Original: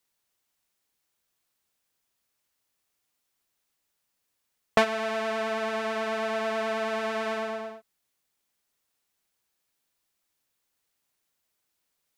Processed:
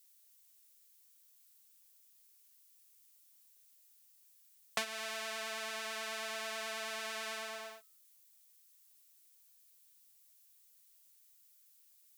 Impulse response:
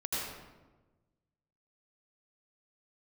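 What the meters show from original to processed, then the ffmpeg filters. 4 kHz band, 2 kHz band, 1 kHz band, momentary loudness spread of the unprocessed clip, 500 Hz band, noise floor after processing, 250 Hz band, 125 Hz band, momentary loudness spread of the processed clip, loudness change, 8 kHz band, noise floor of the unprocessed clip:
-3.0 dB, -8.5 dB, -13.5 dB, 6 LU, -17.0 dB, -66 dBFS, -21.0 dB, under -20 dB, 5 LU, -11.0 dB, +2.5 dB, -79 dBFS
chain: -filter_complex "[0:a]aderivative,bandreject=f=258.1:t=h:w=4,bandreject=f=516.2:t=h:w=4,bandreject=f=774.3:t=h:w=4,bandreject=f=1.0324k:t=h:w=4,bandreject=f=1.2905k:t=h:w=4,acrossover=split=300[a][b];[b]acompressor=threshold=-51dB:ratio=2[c];[a][c]amix=inputs=2:normalize=0,volume=10dB"

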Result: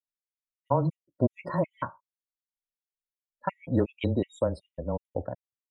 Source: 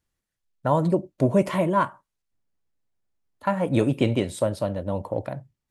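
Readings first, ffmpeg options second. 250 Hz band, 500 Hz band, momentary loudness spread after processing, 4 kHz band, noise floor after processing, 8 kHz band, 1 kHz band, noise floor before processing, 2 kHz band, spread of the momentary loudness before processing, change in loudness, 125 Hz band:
-6.5 dB, -6.5 dB, 10 LU, -10.0 dB, under -85 dBFS, under -15 dB, -7.5 dB, -84 dBFS, -9.0 dB, 9 LU, -6.5 dB, -5.0 dB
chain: -af "afftdn=nr=31:nf=-38,afreqshift=-17,afftfilt=real='re*gt(sin(2*PI*2.7*pts/sr)*(1-2*mod(floor(b*sr/1024/1900),2)),0)':imag='im*gt(sin(2*PI*2.7*pts/sr)*(1-2*mod(floor(b*sr/1024/1900),2)),0)':win_size=1024:overlap=0.75,volume=-3dB"

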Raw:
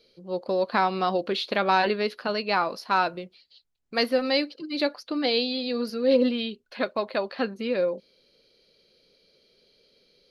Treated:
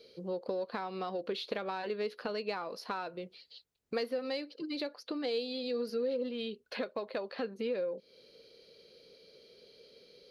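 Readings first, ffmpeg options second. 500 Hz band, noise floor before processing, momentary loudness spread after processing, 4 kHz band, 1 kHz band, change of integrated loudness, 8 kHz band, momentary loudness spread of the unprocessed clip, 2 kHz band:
-9.0 dB, -68 dBFS, 12 LU, -12.5 dB, -15.0 dB, -11.0 dB, n/a, 9 LU, -14.0 dB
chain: -filter_complex "[0:a]asplit=2[a][b];[b]asoftclip=type=tanh:threshold=-24.5dB,volume=-12dB[c];[a][c]amix=inputs=2:normalize=0,highpass=51,acompressor=threshold=-37dB:ratio=6,equalizer=f=460:t=o:w=0.4:g=8"

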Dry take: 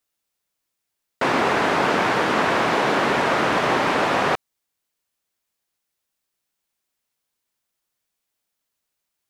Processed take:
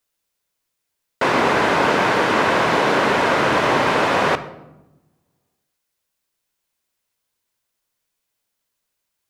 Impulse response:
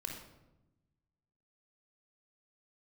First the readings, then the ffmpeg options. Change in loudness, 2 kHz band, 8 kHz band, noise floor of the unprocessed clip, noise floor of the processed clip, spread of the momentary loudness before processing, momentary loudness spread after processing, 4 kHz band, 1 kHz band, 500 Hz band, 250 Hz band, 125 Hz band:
+2.5 dB, +3.0 dB, +2.5 dB, -80 dBFS, -78 dBFS, 3 LU, 3 LU, +2.5 dB, +2.5 dB, +3.0 dB, +2.0 dB, +3.0 dB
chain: -filter_complex "[0:a]asplit=2[a][b];[1:a]atrim=start_sample=2205[c];[b][c]afir=irnorm=-1:irlink=0,volume=-5.5dB[d];[a][d]amix=inputs=2:normalize=0"

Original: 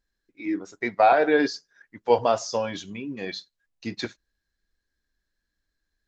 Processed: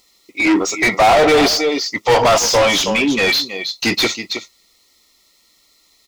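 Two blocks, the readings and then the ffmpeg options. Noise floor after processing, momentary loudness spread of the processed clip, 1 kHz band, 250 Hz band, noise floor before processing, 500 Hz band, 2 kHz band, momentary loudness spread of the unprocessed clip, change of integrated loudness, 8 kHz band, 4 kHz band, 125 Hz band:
-57 dBFS, 10 LU, +8.0 dB, +11.0 dB, -82 dBFS, +9.0 dB, +14.0 dB, 17 LU, +10.0 dB, n/a, +20.0 dB, +12.5 dB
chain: -filter_complex "[0:a]asuperstop=centerf=1600:order=20:qfactor=3.6,crystalizer=i=3.5:c=0,asplit=2[a][b];[b]aecho=0:1:321:0.141[c];[a][c]amix=inputs=2:normalize=0,asplit=2[d][e];[e]highpass=f=720:p=1,volume=34dB,asoftclip=type=tanh:threshold=-4.5dB[f];[d][f]amix=inputs=2:normalize=0,lowpass=f=3k:p=1,volume=-6dB"

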